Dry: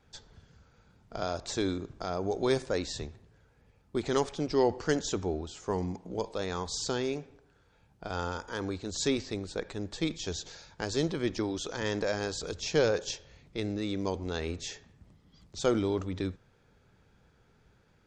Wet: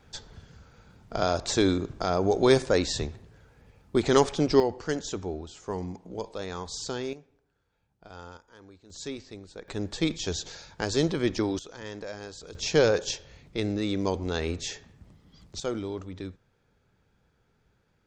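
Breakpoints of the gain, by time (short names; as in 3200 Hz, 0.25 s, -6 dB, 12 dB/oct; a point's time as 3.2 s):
+7.5 dB
from 4.6 s -1.5 dB
from 7.13 s -10.5 dB
from 8.37 s -17 dB
from 8.9 s -8 dB
from 9.68 s +4.5 dB
from 11.59 s -7.5 dB
from 12.55 s +4.5 dB
from 15.6 s -4.5 dB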